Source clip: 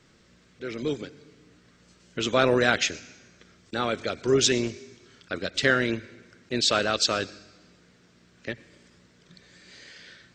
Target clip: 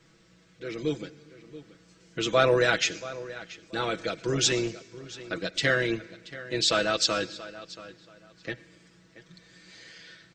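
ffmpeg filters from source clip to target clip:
-filter_complex "[0:a]aecho=1:1:6.1:0.75,asplit=2[a][b];[b]adelay=680,lowpass=f=4.1k:p=1,volume=-16dB,asplit=2[c][d];[d]adelay=680,lowpass=f=4.1k:p=1,volume=0.23[e];[c][e]amix=inputs=2:normalize=0[f];[a][f]amix=inputs=2:normalize=0,volume=-3dB"

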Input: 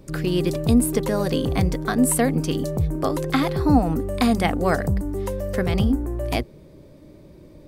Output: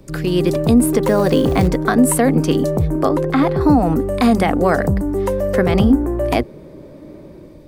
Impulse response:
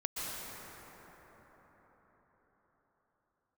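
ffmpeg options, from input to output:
-filter_complex "[0:a]asettb=1/sr,asplit=3[a][b][c];[a]atrim=end=1.034[d];[b]atrim=start=1.03:end=1.68,asetpts=PTS-STARTPTS,afade=t=in:d=0.004:c=qsin,afade=t=out:st=0.646:d=0.004:c=qsin,acrusher=bits=6:mode=log:mix=0:aa=0.000001[e];[c]atrim=start=1.676[f];[d][e]acrossfade=d=0.004:c1=hsin:c2=qsin[g];[g][f]acrossfade=d=0.004:c1=qsin:c2=hsin,asettb=1/sr,asplit=3[h][i][j];[h]atrim=end=3.094[k];[i]atrim=start=3.09:end=3.61,asetpts=PTS-STARTPTS,afade=t=in:d=0.004:c=qsin,afade=t=out:st=0.516:d=0.004:c=qsin,highshelf=f=2.8k:g=-10.5[l];[j]atrim=start=3.606[m];[k][l]acrossfade=d=0.004:c1=hsin:c2=qsin[n];[n][m]acrossfade=d=0.004:c1=qsin:c2=hsin,acrossover=split=180|2100[o][p][q];[p]dynaudnorm=f=180:g=5:m=8dB[r];[o][r][q]amix=inputs=3:normalize=0,alimiter=level_in=6dB:limit=-1dB:release=50:level=0:latency=1,volume=-3dB"

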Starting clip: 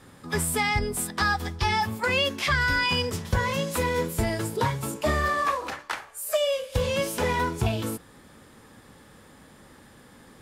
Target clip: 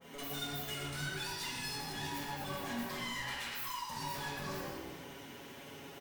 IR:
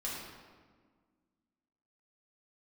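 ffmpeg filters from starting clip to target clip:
-filter_complex "[0:a]asetrate=76440,aresample=44100,aecho=1:1:7.2:0.85,asplit=4[a][b][c][d];[b]adelay=110,afreqshift=-61,volume=-13dB[e];[c]adelay=220,afreqshift=-122,volume=-22.4dB[f];[d]adelay=330,afreqshift=-183,volume=-31.7dB[g];[a][e][f][g]amix=inputs=4:normalize=0,acompressor=threshold=-30dB:ratio=6,highpass=59,asoftclip=type=hard:threshold=-37.5dB[h];[1:a]atrim=start_sample=2205[i];[h][i]afir=irnorm=-1:irlink=0,adynamicequalizer=threshold=0.00282:dfrequency=1800:dqfactor=0.7:tfrequency=1800:tqfactor=0.7:attack=5:release=100:ratio=0.375:range=1.5:mode=boostabove:tftype=highshelf,volume=-4.5dB"

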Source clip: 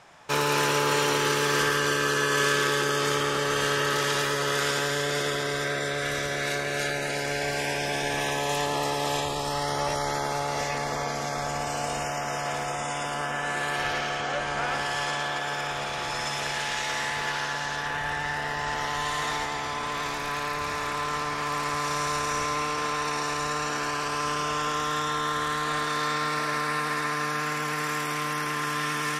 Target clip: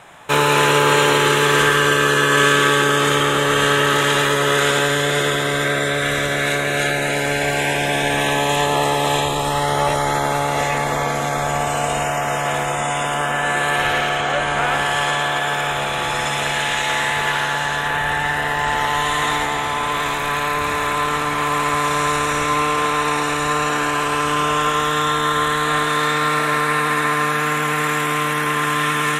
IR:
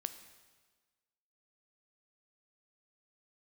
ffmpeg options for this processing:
-filter_complex "[0:a]acrossover=split=8900[a][b];[b]acompressor=threshold=-52dB:ratio=4:attack=1:release=60[c];[a][c]amix=inputs=2:normalize=0,asplit=2[d][e];[e]asuperstop=centerf=5200:order=8:qfactor=2.8[f];[1:a]atrim=start_sample=2205,highshelf=f=8.1k:g=9.5[g];[f][g]afir=irnorm=-1:irlink=0,volume=9.5dB[h];[d][h]amix=inputs=2:normalize=0,volume=-1.5dB"

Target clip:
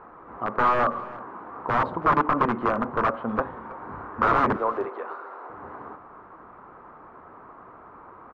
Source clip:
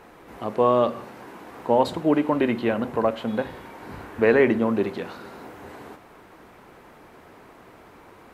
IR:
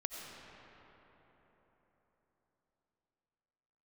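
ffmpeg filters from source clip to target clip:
-filter_complex "[0:a]asettb=1/sr,asplit=3[a][b][c];[a]atrim=end=4.564[d];[b]atrim=start=4.56:end=5.5,asetpts=PTS-STARTPTS,afade=t=in:d=0.004:c=qsin,afade=t=out:st=0.936:d=0.004:c=qsin,highpass=f=390:w=0.5412,highpass=f=390:w=1.3066[e];[c]atrim=start=5.496[f];[d][e]acrossfade=d=0.004:c1=hsin:c2=qsin[g];[g][f]acrossfade=d=0.004:c1=qsin:c2=hsin,aeval=exprs='(mod(5.96*val(0)+1,2)-1)/5.96':c=same,lowpass=f=1.2k:t=q:w=3.7,aecho=1:1:322:0.112,volume=-2.5dB"

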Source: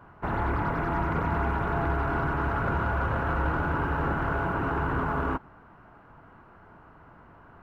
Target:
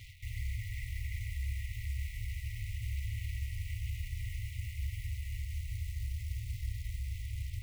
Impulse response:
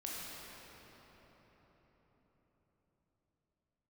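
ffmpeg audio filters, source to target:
-filter_complex "[0:a]asplit=2[a][b];[1:a]atrim=start_sample=2205,asetrate=34839,aresample=44100,highshelf=f=2.4k:g=4[c];[b][c]afir=irnorm=-1:irlink=0,volume=-3dB[d];[a][d]amix=inputs=2:normalize=0,acrusher=bits=6:mode=log:mix=0:aa=0.000001,areverse,acompressor=threshold=-33dB:ratio=4,areverse,aeval=exprs='sgn(val(0))*max(abs(val(0))-0.00141,0)':c=same,alimiter=level_in=10.5dB:limit=-24dB:level=0:latency=1:release=49,volume=-10.5dB,afftfilt=real='re*(1-between(b*sr/4096,120,1900))':imag='im*(1-between(b*sr/4096,120,1900))':win_size=4096:overlap=0.75,volume=10dB"

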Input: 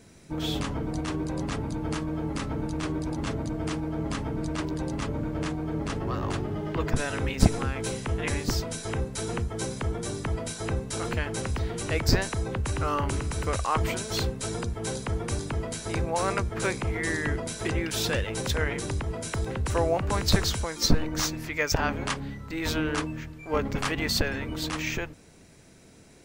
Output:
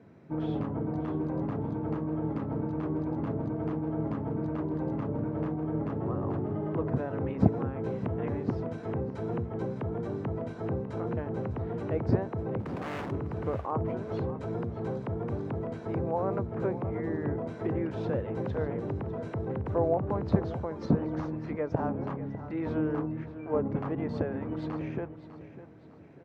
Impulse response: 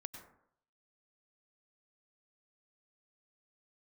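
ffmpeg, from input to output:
-filter_complex "[0:a]lowpass=1.3k,acrossover=split=930[a][b];[b]acompressor=threshold=-50dB:ratio=6[c];[a][c]amix=inputs=2:normalize=0,asplit=3[d][e][f];[d]afade=t=out:st=12.59:d=0.02[g];[e]aeval=exprs='0.0299*(abs(mod(val(0)/0.0299+3,4)-2)-1)':c=same,afade=t=in:st=12.59:d=0.02,afade=t=out:st=13.1:d=0.02[h];[f]afade=t=in:st=13.1:d=0.02[i];[g][h][i]amix=inputs=3:normalize=0,highpass=f=97:w=0.5412,highpass=f=97:w=1.3066,aecho=1:1:601|1202|1803|2404:0.2|0.0818|0.0335|0.0138"

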